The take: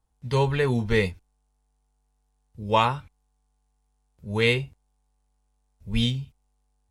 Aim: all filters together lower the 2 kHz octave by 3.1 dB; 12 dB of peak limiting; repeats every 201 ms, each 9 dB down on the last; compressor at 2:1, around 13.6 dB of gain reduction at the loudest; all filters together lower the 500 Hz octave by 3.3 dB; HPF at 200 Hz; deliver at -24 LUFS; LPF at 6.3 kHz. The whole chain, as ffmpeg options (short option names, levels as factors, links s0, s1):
-af "highpass=200,lowpass=6300,equalizer=f=500:t=o:g=-3.5,equalizer=f=2000:t=o:g=-3.5,acompressor=threshold=0.00708:ratio=2,alimiter=level_in=2.99:limit=0.0631:level=0:latency=1,volume=0.335,aecho=1:1:201|402|603|804:0.355|0.124|0.0435|0.0152,volume=11.2"